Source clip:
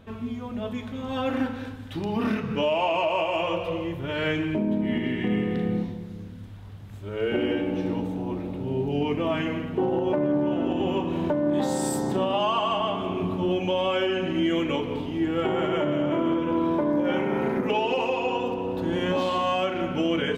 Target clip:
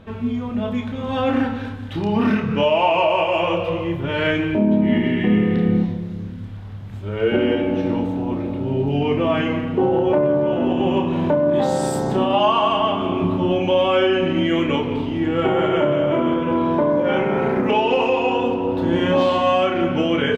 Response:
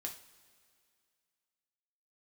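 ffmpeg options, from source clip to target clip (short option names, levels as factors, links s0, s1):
-filter_complex "[0:a]highshelf=f=7200:g=-9.5,asplit=2[s0][s1];[s1]adelay=29,volume=0.447[s2];[s0][s2]amix=inputs=2:normalize=0,asplit=2[s3][s4];[1:a]atrim=start_sample=2205,lowpass=6300[s5];[s4][s5]afir=irnorm=-1:irlink=0,volume=0.355[s6];[s3][s6]amix=inputs=2:normalize=0,volume=1.68"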